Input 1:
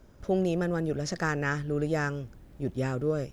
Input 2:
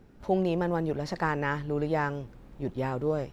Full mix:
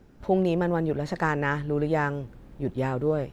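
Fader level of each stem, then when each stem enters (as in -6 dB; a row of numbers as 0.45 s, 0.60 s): -7.5 dB, +0.5 dB; 0.00 s, 0.00 s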